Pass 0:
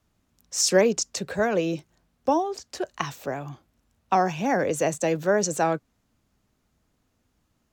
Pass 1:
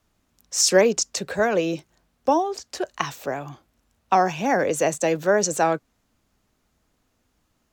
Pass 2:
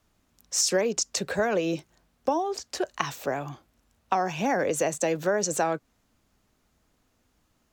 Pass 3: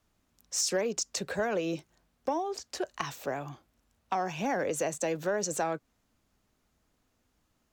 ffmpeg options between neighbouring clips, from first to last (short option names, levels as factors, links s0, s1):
-af "equalizer=f=120:t=o:w=2.4:g=-5,volume=1.5"
-af "acompressor=threshold=0.0794:ratio=4"
-af "asoftclip=type=tanh:threshold=0.224,volume=0.596"